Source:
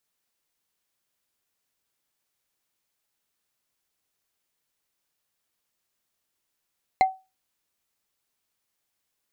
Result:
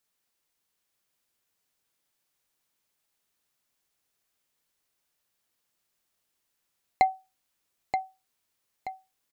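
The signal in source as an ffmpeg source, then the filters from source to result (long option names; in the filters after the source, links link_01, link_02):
-f lavfi -i "aevalsrc='0.266*pow(10,-3*t/0.26)*sin(2*PI*759*t)+0.106*pow(10,-3*t/0.077)*sin(2*PI*2092.6*t)+0.0422*pow(10,-3*t/0.034)*sin(2*PI*4101.6*t)+0.0168*pow(10,-3*t/0.019)*sin(2*PI*6780.1*t)+0.00668*pow(10,-3*t/0.012)*sin(2*PI*10125.1*t)':duration=0.45:sample_rate=44100"
-af "aecho=1:1:928|1856|2784|3712:0.447|0.165|0.0612|0.0226"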